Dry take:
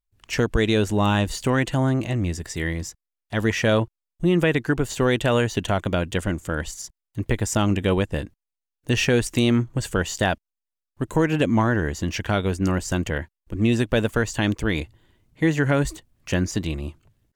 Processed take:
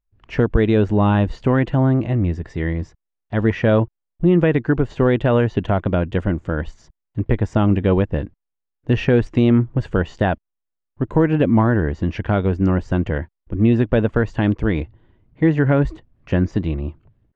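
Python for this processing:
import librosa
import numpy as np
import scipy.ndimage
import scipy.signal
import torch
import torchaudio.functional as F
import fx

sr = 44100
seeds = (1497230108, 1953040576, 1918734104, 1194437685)

y = fx.spacing_loss(x, sr, db_at_10k=42)
y = y * librosa.db_to_amplitude(6.0)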